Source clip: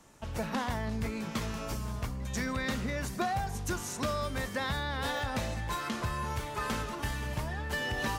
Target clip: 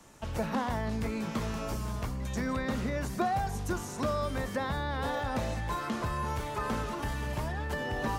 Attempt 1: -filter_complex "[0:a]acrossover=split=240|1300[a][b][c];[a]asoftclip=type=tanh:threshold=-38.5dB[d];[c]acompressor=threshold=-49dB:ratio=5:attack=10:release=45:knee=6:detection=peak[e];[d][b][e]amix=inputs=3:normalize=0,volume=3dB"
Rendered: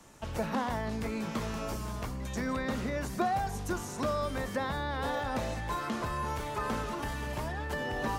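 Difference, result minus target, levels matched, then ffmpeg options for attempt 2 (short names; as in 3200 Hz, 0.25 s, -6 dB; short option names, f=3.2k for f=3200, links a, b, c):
soft clip: distortion +6 dB
-filter_complex "[0:a]acrossover=split=240|1300[a][b][c];[a]asoftclip=type=tanh:threshold=-32dB[d];[c]acompressor=threshold=-49dB:ratio=5:attack=10:release=45:knee=6:detection=peak[e];[d][b][e]amix=inputs=3:normalize=0,volume=3dB"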